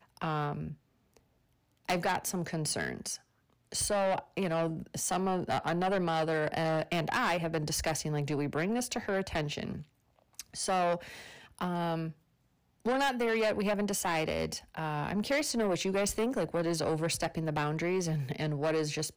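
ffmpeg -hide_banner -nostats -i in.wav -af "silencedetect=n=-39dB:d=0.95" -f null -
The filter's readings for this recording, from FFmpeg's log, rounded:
silence_start: 0.73
silence_end: 1.89 | silence_duration: 1.16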